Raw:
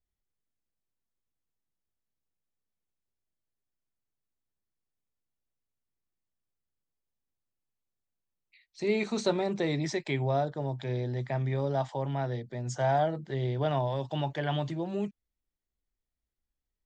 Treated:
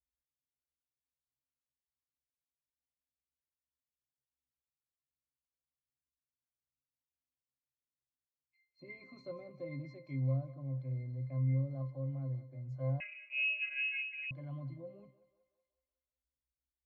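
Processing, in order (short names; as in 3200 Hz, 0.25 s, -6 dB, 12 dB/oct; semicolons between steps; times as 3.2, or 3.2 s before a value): octave resonator C, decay 0.28 s; thinning echo 0.186 s, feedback 56%, high-pass 410 Hz, level -14.5 dB; 13–14.31 inverted band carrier 2700 Hz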